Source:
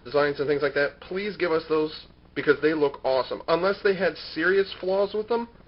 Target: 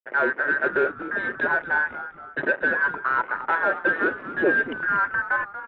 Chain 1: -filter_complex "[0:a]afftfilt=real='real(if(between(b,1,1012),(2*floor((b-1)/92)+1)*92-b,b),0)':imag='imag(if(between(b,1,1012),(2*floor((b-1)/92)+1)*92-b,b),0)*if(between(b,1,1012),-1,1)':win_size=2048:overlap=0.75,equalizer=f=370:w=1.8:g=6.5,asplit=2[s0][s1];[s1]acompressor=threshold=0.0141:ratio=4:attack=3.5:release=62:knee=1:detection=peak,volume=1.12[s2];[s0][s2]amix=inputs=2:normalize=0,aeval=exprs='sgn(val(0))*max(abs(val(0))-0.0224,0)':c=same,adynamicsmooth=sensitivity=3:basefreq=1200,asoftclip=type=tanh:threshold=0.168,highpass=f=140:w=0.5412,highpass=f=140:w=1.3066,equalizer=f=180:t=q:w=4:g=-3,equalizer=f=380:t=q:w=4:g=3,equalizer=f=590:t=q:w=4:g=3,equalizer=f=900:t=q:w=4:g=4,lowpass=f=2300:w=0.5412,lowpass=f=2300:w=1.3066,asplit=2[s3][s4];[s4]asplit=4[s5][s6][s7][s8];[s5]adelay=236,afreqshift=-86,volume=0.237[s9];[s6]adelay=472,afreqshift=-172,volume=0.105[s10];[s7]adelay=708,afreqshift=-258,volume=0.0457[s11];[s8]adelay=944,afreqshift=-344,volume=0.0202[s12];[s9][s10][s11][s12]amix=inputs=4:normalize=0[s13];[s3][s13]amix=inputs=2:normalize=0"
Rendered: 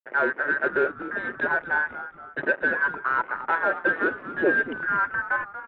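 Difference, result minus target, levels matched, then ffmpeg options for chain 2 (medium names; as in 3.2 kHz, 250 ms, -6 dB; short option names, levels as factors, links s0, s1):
compression: peak gain reduction +7 dB
-filter_complex "[0:a]afftfilt=real='real(if(between(b,1,1012),(2*floor((b-1)/92)+1)*92-b,b),0)':imag='imag(if(between(b,1,1012),(2*floor((b-1)/92)+1)*92-b,b),0)*if(between(b,1,1012),-1,1)':win_size=2048:overlap=0.75,equalizer=f=370:w=1.8:g=6.5,asplit=2[s0][s1];[s1]acompressor=threshold=0.0422:ratio=4:attack=3.5:release=62:knee=1:detection=peak,volume=1.12[s2];[s0][s2]amix=inputs=2:normalize=0,aeval=exprs='sgn(val(0))*max(abs(val(0))-0.0224,0)':c=same,adynamicsmooth=sensitivity=3:basefreq=1200,asoftclip=type=tanh:threshold=0.168,highpass=f=140:w=0.5412,highpass=f=140:w=1.3066,equalizer=f=180:t=q:w=4:g=-3,equalizer=f=380:t=q:w=4:g=3,equalizer=f=590:t=q:w=4:g=3,equalizer=f=900:t=q:w=4:g=4,lowpass=f=2300:w=0.5412,lowpass=f=2300:w=1.3066,asplit=2[s3][s4];[s4]asplit=4[s5][s6][s7][s8];[s5]adelay=236,afreqshift=-86,volume=0.237[s9];[s6]adelay=472,afreqshift=-172,volume=0.105[s10];[s7]adelay=708,afreqshift=-258,volume=0.0457[s11];[s8]adelay=944,afreqshift=-344,volume=0.0202[s12];[s9][s10][s11][s12]amix=inputs=4:normalize=0[s13];[s3][s13]amix=inputs=2:normalize=0"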